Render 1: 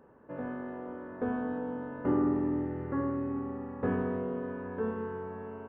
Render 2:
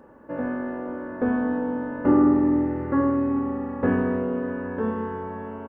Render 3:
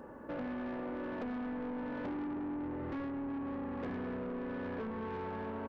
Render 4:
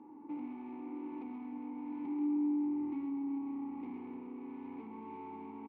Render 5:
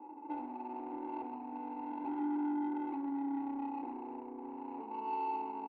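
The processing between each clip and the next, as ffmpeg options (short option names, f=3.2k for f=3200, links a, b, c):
-af "aecho=1:1:3.5:0.38,volume=8dB"
-af "acompressor=threshold=-33dB:ratio=4,asoftclip=type=tanh:threshold=-37dB,volume=1dB"
-filter_complex "[0:a]asplit=3[a][b][c];[a]bandpass=f=300:t=q:w=8,volume=0dB[d];[b]bandpass=f=870:t=q:w=8,volume=-6dB[e];[c]bandpass=f=2.24k:t=q:w=8,volume=-9dB[f];[d][e][f]amix=inputs=3:normalize=0,aecho=1:1:132:0.422,volume=5dB"
-filter_complex "[0:a]highpass=f=340:w=0.5412,highpass=f=340:w=1.3066,equalizer=f=420:t=q:w=4:g=-4,equalizer=f=600:t=q:w=4:g=8,equalizer=f=870:t=q:w=4:g=9,equalizer=f=1.4k:t=q:w=4:g=-8,lowpass=f=2.1k:w=0.5412,lowpass=f=2.1k:w=1.3066,adynamicsmooth=sensitivity=4:basefreq=810,asplit=2[a][b];[b]adelay=32,volume=-11dB[c];[a][c]amix=inputs=2:normalize=0,volume=6dB"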